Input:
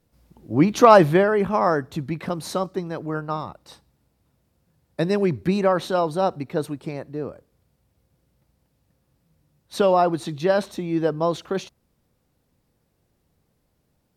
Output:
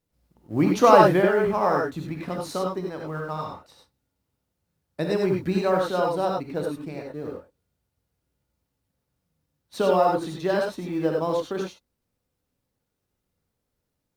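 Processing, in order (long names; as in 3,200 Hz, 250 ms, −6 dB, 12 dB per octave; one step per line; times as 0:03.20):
mu-law and A-law mismatch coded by A
reverb whose tail is shaped and stops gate 120 ms rising, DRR 0 dB
level −4.5 dB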